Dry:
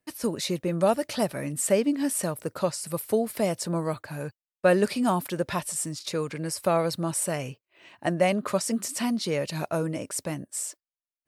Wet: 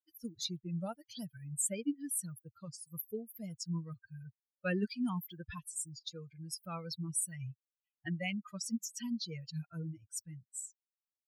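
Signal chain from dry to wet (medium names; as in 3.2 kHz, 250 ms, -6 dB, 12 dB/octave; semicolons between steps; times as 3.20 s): expander on every frequency bin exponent 3; amplifier tone stack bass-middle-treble 6-0-2; trim +14 dB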